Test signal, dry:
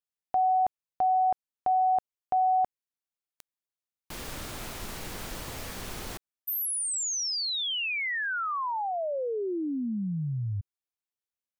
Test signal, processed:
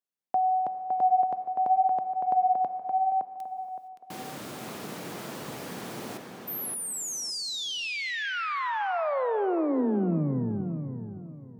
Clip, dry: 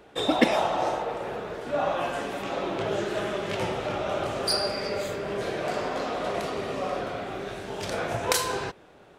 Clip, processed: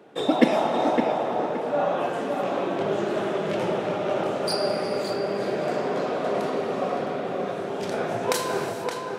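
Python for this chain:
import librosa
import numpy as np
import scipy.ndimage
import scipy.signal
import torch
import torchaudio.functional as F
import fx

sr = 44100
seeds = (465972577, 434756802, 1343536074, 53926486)

y = scipy.signal.sosfilt(scipy.signal.butter(4, 140.0, 'highpass', fs=sr, output='sos'), x)
y = fx.tilt_shelf(y, sr, db=4.0, hz=970.0)
y = fx.echo_tape(y, sr, ms=566, feedback_pct=35, wet_db=-3.5, lp_hz=2800.0, drive_db=5.0, wow_cents=39)
y = fx.rev_gated(y, sr, seeds[0], gate_ms=490, shape='flat', drr_db=9.5)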